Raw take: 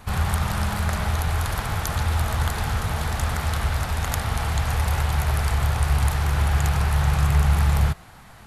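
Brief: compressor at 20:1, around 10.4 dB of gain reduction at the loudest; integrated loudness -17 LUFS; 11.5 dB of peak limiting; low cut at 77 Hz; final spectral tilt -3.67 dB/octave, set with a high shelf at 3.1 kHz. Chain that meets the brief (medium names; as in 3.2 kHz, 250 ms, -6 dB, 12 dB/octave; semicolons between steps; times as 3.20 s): high-pass 77 Hz; treble shelf 3.1 kHz +8.5 dB; compression 20:1, threshold -27 dBFS; trim +15 dB; peak limiter -5.5 dBFS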